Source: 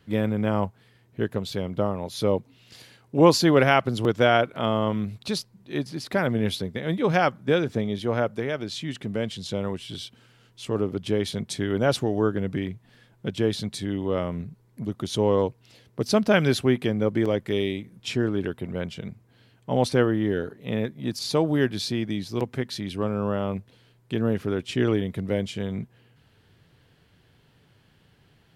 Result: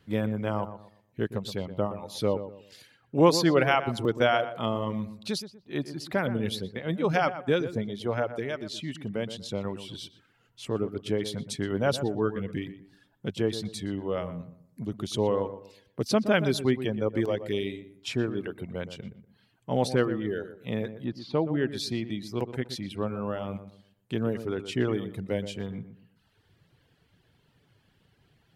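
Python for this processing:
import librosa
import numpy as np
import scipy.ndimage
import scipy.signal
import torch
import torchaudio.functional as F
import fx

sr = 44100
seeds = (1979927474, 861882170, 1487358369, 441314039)

y = fx.dereverb_blind(x, sr, rt60_s=1.0)
y = fx.air_absorb(y, sr, metres=310.0, at=(21.04, 21.69))
y = fx.echo_filtered(y, sr, ms=121, feedback_pct=32, hz=1600.0, wet_db=-11.0)
y = y * librosa.db_to_amplitude(-3.0)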